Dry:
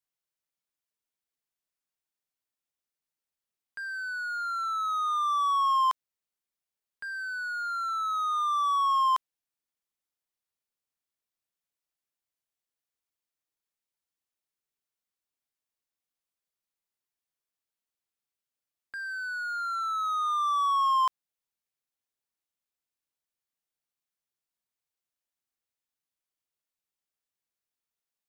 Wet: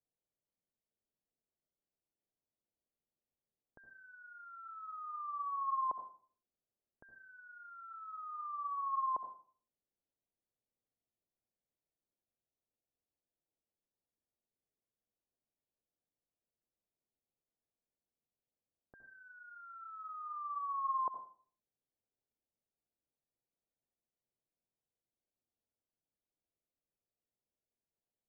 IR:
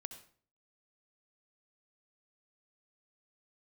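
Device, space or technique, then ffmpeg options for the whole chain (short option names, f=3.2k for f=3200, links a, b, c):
next room: -filter_complex "[0:a]lowpass=f=690:w=0.5412,lowpass=f=690:w=1.3066[a];[1:a]atrim=start_sample=2205[b];[a][b]afir=irnorm=-1:irlink=0,volume=8dB"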